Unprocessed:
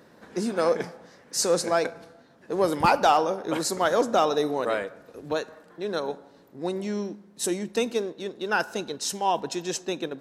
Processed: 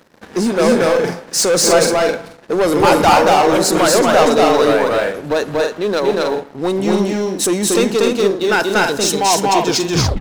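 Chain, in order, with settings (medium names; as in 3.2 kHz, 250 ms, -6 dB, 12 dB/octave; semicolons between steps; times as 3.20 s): tape stop on the ending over 0.54 s; waveshaping leveller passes 3; loudspeakers at several distances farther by 81 m -1 dB, 97 m -5 dB; trim +2 dB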